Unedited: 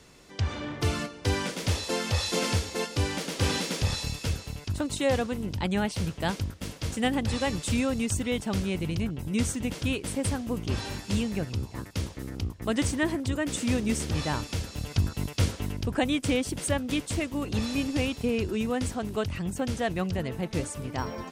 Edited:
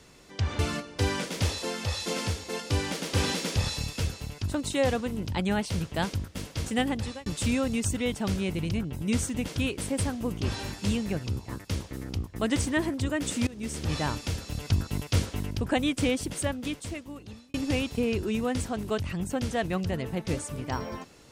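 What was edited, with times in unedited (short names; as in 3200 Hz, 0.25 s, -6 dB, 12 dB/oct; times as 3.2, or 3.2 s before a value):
0.59–0.85 cut
1.89–2.85 gain -3.5 dB
6.98–7.52 fade out equal-power
13.73–14.19 fade in, from -22.5 dB
16.41–17.8 fade out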